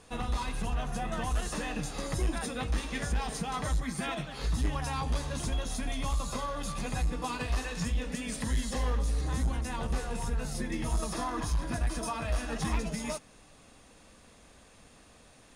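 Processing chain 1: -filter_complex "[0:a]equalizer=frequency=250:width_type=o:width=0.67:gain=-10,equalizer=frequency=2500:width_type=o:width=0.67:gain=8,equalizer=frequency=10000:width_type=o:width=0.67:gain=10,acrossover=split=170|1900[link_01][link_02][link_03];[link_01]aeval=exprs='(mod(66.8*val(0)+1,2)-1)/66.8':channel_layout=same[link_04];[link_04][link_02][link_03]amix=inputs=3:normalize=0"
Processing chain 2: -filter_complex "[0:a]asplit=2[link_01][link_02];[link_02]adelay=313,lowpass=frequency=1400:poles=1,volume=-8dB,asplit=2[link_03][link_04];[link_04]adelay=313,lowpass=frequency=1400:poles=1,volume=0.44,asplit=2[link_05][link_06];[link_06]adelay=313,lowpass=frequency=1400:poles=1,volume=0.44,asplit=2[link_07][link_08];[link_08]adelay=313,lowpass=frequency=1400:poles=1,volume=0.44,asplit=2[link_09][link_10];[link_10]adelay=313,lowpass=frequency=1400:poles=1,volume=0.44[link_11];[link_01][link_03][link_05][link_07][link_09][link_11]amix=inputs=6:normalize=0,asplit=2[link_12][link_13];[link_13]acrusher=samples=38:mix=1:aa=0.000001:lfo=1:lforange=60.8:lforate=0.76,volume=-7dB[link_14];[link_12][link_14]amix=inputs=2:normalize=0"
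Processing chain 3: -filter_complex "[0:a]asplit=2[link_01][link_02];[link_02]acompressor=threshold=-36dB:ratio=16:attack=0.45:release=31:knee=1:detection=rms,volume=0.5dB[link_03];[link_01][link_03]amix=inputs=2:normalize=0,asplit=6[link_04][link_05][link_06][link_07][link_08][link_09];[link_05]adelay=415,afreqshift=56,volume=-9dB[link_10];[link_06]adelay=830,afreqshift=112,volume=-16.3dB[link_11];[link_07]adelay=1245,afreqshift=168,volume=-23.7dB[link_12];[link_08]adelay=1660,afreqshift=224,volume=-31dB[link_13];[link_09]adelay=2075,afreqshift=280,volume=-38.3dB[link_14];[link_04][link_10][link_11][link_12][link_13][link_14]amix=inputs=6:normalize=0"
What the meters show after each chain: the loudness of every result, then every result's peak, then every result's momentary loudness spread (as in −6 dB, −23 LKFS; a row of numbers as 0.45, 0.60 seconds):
−33.5, −30.5, −30.0 LKFS; −18.5, −16.0, −17.0 dBFS; 20, 5, 15 LU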